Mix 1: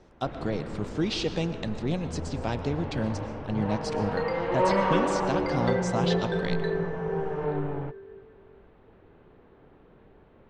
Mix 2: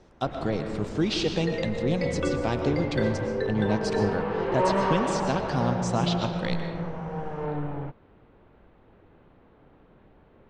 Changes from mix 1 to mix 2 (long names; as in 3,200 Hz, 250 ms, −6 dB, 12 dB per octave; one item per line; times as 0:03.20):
speech: send +7.5 dB
second sound: entry −2.70 s